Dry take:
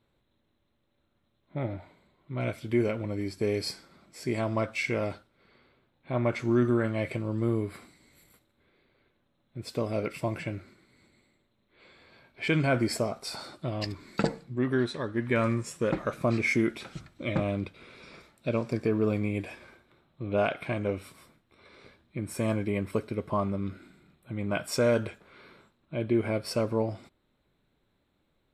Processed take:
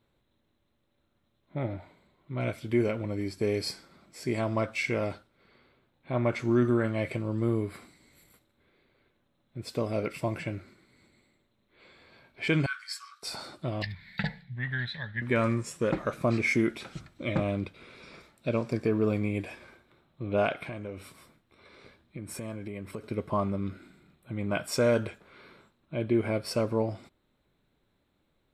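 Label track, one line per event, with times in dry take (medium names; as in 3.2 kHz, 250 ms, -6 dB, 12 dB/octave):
12.660000	13.230000	rippled Chebyshev high-pass 1.1 kHz, ripple 9 dB
13.820000	15.220000	FFT filter 180 Hz 0 dB, 320 Hz -27 dB, 850 Hz -5 dB, 1.2 kHz -17 dB, 1.8 kHz +10 dB, 2.6 kHz -1 dB, 3.7 kHz +5 dB, 6.2 kHz -18 dB, 9 kHz -21 dB, 14 kHz -3 dB
20.640000	23.040000	compression 4:1, threshold -35 dBFS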